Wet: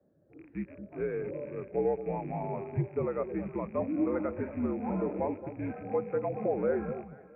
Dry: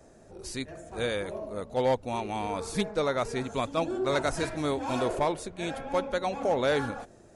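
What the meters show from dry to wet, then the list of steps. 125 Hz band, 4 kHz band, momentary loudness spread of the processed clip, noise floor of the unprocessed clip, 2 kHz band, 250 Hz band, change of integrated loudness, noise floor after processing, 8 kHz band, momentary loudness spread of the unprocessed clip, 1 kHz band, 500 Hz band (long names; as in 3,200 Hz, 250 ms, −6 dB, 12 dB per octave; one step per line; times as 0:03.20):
0.0 dB, below −40 dB, 9 LU, −55 dBFS, −12.5 dB, 0.0 dB, −3.0 dB, −57 dBFS, below −40 dB, 10 LU, −8.0 dB, −3.0 dB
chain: loose part that buzzes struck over −46 dBFS, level −27 dBFS
low-shelf EQ 170 Hz +9.5 dB
downward compressor 3 to 1, threshold −27 dBFS, peak gain reduction 6 dB
on a send: delay that swaps between a low-pass and a high-pass 223 ms, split 960 Hz, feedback 58%, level −7 dB
on the sum: single-sideband voice off tune −62 Hz 160–2,300 Hz
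every bin expanded away from the loudest bin 1.5 to 1
level −1.5 dB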